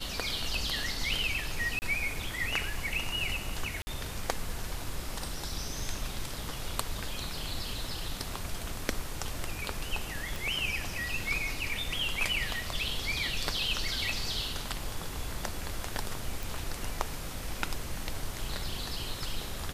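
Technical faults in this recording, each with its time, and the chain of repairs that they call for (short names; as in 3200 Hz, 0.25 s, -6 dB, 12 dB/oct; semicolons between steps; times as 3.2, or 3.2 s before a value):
1.79–1.82 gap 29 ms
3.82–3.87 gap 50 ms
10.36 pop
16.43 pop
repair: de-click; interpolate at 1.79, 29 ms; interpolate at 3.82, 50 ms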